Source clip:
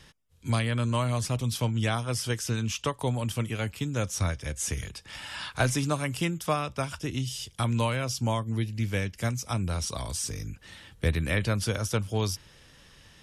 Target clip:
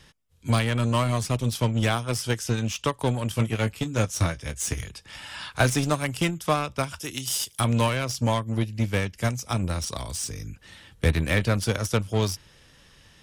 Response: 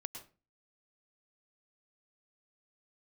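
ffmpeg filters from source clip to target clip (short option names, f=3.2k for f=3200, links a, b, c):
-filter_complex "[0:a]asettb=1/sr,asplit=3[a][b][c];[a]atrim=end=3.314[d];[b]atrim=start=3.31:end=4.84,asetpts=PTS-STARTPTS,afade=t=in:d=0.004:c=qsin,afade=t=out:st=1.526:d=0.004:c=qsin,asplit=2[e][f];[f]adelay=18,volume=-8dB[g];[e][g]amix=inputs=2:normalize=0,atrim=end_sample=67473[h];[c]atrim=start=4.836[i];[d][h]acrossfade=d=0.004:c1=hsin:c2=qsin[j];[j][i]acrossfade=d=0.004:c1=qsin:c2=hsin,asplit=3[k][l][m];[k]afade=t=out:st=6.98:d=0.02[n];[l]aemphasis=mode=production:type=bsi,afade=t=in:st=6.98:d=0.02,afade=t=out:st=7.59:d=0.02[o];[m]afade=t=in:st=7.59:d=0.02[p];[n][o][p]amix=inputs=3:normalize=0,asplit=2[q][r];[r]acrusher=bits=3:mix=0:aa=0.5,volume=-4.5dB[s];[q][s]amix=inputs=2:normalize=0"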